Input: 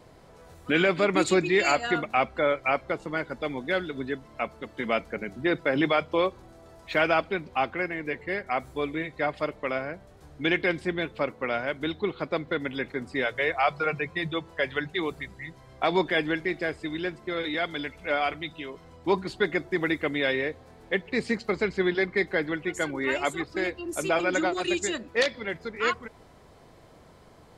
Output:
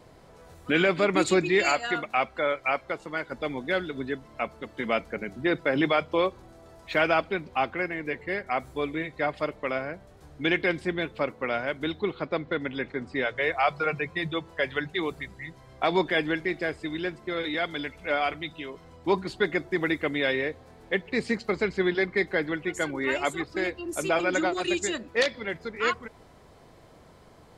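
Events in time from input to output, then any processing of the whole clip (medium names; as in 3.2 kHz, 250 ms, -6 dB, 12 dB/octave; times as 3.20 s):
1.69–3.32 s: bass shelf 440 Hz -7 dB
12.19–13.44 s: distance through air 70 m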